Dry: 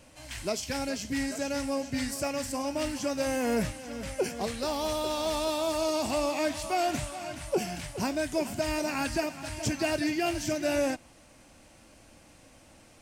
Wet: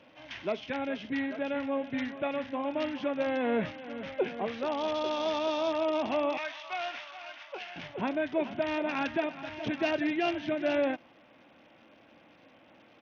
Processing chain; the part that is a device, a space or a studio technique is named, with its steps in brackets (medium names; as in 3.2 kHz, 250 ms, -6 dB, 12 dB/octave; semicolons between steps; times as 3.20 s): 6.37–7.76 s: high-pass 1.1 kHz 12 dB/octave; Bluetooth headset (high-pass 200 Hz 12 dB/octave; resampled via 8 kHz; SBC 64 kbps 48 kHz)